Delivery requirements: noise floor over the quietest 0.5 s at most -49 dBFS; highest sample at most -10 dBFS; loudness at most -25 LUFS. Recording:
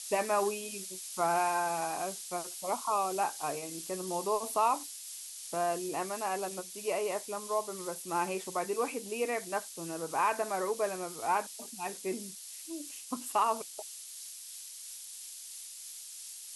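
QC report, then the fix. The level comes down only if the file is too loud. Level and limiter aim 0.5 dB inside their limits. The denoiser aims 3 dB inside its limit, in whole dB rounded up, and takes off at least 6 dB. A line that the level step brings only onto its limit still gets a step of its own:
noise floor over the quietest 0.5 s -46 dBFS: fail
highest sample -17.0 dBFS: pass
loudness -34.5 LUFS: pass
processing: noise reduction 6 dB, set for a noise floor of -46 dBFS

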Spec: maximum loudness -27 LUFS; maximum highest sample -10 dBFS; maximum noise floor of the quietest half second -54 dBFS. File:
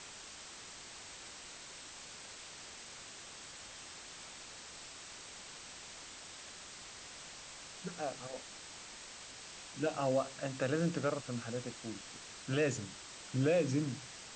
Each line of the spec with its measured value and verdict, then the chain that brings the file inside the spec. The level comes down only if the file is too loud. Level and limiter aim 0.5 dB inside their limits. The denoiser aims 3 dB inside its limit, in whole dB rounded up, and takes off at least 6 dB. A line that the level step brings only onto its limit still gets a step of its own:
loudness -40.5 LUFS: pass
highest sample -21.0 dBFS: pass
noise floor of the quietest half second -51 dBFS: fail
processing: noise reduction 6 dB, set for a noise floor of -51 dBFS

